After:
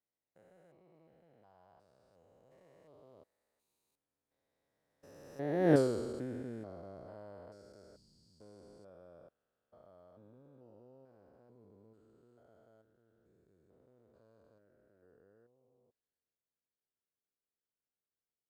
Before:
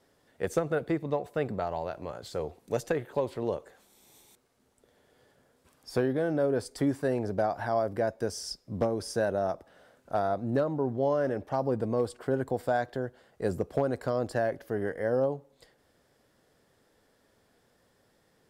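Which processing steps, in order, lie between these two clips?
spectrogram pixelated in time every 400 ms; Doppler pass-by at 5.75 s, 35 m/s, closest 2.3 m; trim +8 dB

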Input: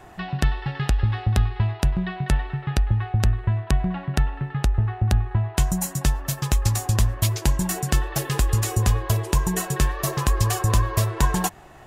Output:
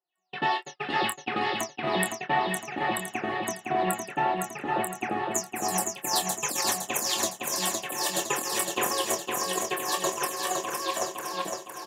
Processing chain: delay that grows with frequency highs early, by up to 267 ms; gate -23 dBFS, range -59 dB; high-pass 300 Hz 24 dB/octave; peaking EQ 1.7 kHz -3.5 dB 0.76 oct; compressor with a negative ratio -37 dBFS, ratio -0.5; doubling 26 ms -7 dB; on a send: feedback delay 511 ms, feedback 49%, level -3.5 dB; on the sum: trim +8.5 dB

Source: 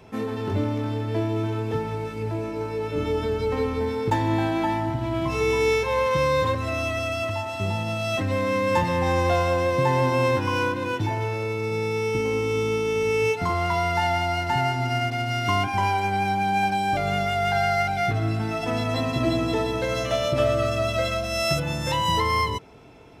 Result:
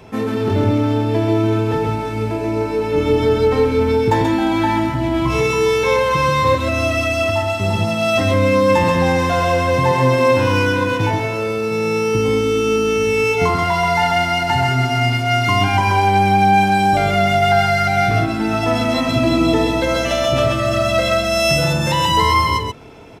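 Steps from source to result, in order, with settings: in parallel at +2.5 dB: peak limiter -16.5 dBFS, peak gain reduction 6.5 dB; on the sum: delay 133 ms -3 dB

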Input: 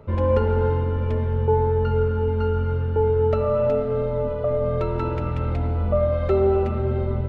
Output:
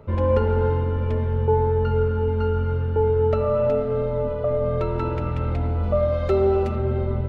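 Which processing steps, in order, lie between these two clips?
5.83–6.76 s: tone controls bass -1 dB, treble +10 dB

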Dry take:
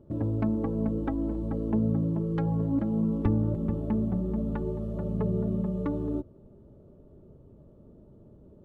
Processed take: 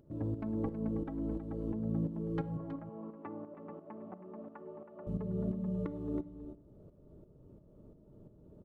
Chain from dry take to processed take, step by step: upward compressor, threshold -43 dBFS; tremolo saw up 2.9 Hz, depth 70%; 2.57–5.07 s: cabinet simulation 460–2400 Hz, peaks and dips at 460 Hz -4 dB, 690 Hz +3 dB, 1.1 kHz +5 dB; delay 321 ms -11 dB; simulated room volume 2400 m³, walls furnished, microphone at 0.51 m; trim -5 dB

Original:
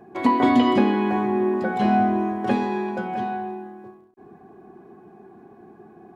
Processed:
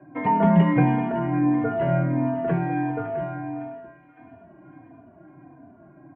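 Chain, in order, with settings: mistuned SSB -74 Hz 170–2500 Hz; two-band feedback delay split 880 Hz, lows 199 ms, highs 558 ms, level -14 dB; endless flanger 3.2 ms -1.5 Hz; trim +1.5 dB

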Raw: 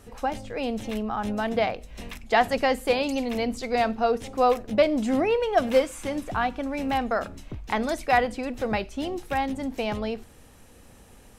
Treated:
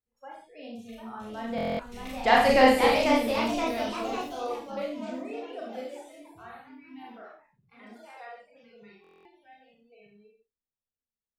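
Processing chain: Doppler pass-by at 2.55 s, 10 m/s, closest 2.4 m; spectral noise reduction 26 dB; reverberation, pre-delay 27 ms, DRR -3.5 dB; ever faster or slower copies 772 ms, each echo +2 st, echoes 3, each echo -6 dB; buffer glitch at 1.56/9.02 s, samples 1024, times 9

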